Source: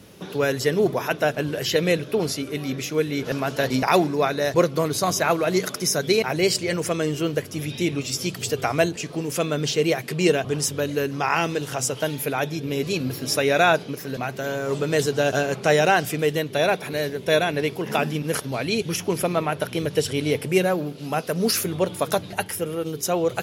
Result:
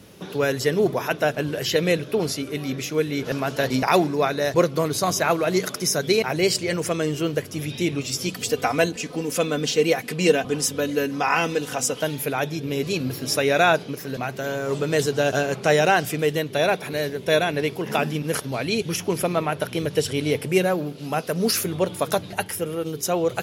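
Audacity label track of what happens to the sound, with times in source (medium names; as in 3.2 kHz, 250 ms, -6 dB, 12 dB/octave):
8.280000	12.020000	comb 4 ms, depth 55%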